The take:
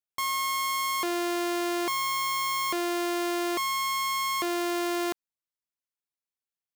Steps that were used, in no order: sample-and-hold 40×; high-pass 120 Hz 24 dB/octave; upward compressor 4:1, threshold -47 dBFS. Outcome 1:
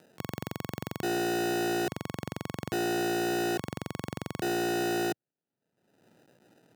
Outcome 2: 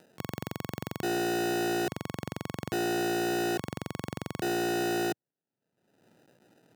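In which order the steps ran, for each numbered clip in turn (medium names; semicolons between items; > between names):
sample-and-hold > upward compressor > high-pass; sample-and-hold > high-pass > upward compressor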